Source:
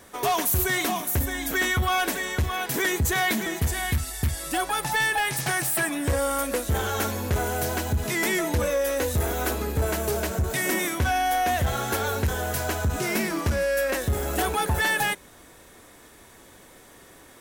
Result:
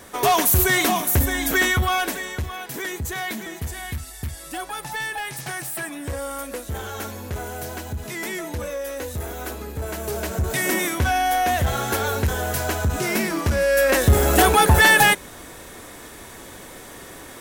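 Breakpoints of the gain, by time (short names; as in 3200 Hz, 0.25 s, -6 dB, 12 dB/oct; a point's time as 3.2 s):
1.53 s +6 dB
2.63 s -5 dB
9.8 s -5 dB
10.52 s +3 dB
13.47 s +3 dB
14.09 s +10 dB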